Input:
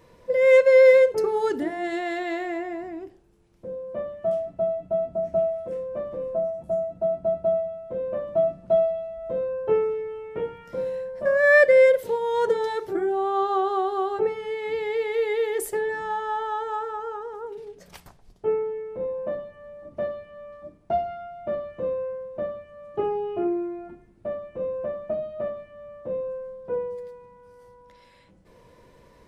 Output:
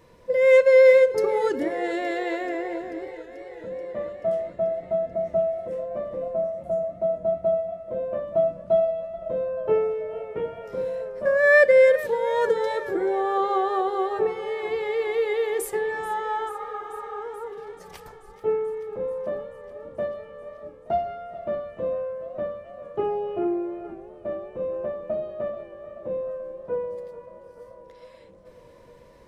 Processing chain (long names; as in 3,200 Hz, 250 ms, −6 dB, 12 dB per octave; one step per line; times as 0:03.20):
healed spectral selection 0:16.51–0:17.14, 440–8,800 Hz after
feedback echo with a swinging delay time 435 ms, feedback 75%, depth 81 cents, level −17 dB